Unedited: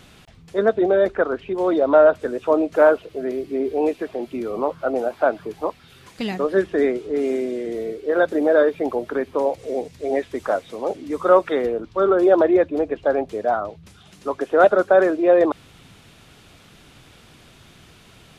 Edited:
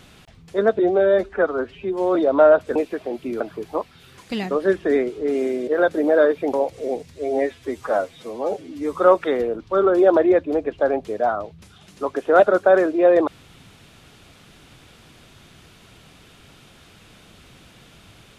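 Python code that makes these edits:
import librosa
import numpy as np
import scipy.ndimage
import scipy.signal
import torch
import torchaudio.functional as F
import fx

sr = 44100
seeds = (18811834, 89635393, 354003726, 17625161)

y = fx.edit(x, sr, fx.stretch_span(start_s=0.79, length_s=0.91, factor=1.5),
    fx.cut(start_s=2.3, length_s=1.54),
    fx.cut(start_s=4.49, length_s=0.8),
    fx.cut(start_s=7.56, length_s=0.49),
    fx.cut(start_s=8.91, length_s=0.48),
    fx.stretch_span(start_s=9.96, length_s=1.22, factor=1.5), tone=tone)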